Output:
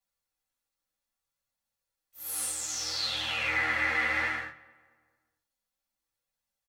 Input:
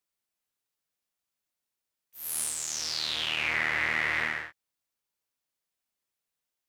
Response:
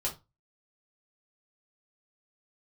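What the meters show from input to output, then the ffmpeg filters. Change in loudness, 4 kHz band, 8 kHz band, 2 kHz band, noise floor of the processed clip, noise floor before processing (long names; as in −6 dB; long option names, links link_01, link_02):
−0.5 dB, −1.5 dB, −1.0 dB, 0.0 dB, below −85 dBFS, below −85 dBFS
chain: -filter_complex "[1:a]atrim=start_sample=2205,asetrate=61740,aresample=44100[link_01];[0:a][link_01]afir=irnorm=-1:irlink=0,flanger=delay=1:depth=3.2:regen=-48:speed=0.62:shape=triangular,asplit=2[link_02][link_03];[link_03]adelay=226,lowpass=frequency=2000:poles=1,volume=-20dB,asplit=2[link_04][link_05];[link_05]adelay=226,lowpass=frequency=2000:poles=1,volume=0.47,asplit=2[link_06][link_07];[link_07]adelay=226,lowpass=frequency=2000:poles=1,volume=0.47,asplit=2[link_08][link_09];[link_09]adelay=226,lowpass=frequency=2000:poles=1,volume=0.47[link_10];[link_02][link_04][link_06][link_08][link_10]amix=inputs=5:normalize=0,volume=2.5dB"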